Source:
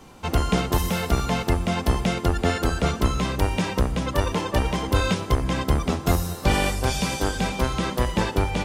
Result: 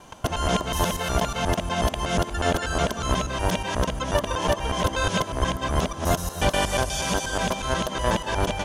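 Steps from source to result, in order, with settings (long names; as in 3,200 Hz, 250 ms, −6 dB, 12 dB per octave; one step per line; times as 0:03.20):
reversed piece by piece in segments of 121 ms
thirty-one-band graphic EQ 630 Hz +11 dB, 1,000 Hz +7 dB, 1,600 Hz +7 dB, 3,150 Hz +8 dB, 6,300 Hz +9 dB, 10,000 Hz +7 dB
level −4 dB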